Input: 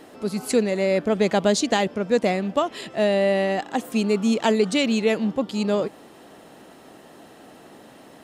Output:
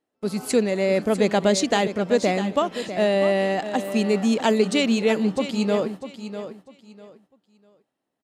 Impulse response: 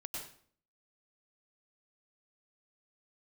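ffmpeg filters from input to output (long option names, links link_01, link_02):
-filter_complex "[0:a]agate=range=-35dB:threshold=-36dB:ratio=16:detection=peak,asplit=2[link_01][link_02];[link_02]aecho=0:1:648|1296|1944:0.282|0.0676|0.0162[link_03];[link_01][link_03]amix=inputs=2:normalize=0,aresample=32000,aresample=44100"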